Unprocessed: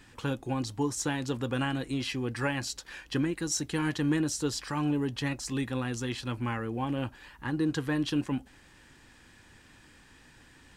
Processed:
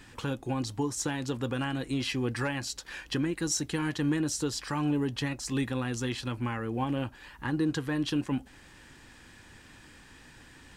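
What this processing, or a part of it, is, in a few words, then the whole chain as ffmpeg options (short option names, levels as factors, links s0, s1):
clipper into limiter: -af "asoftclip=type=hard:threshold=0.133,alimiter=limit=0.0708:level=0:latency=1:release=444,volume=1.5"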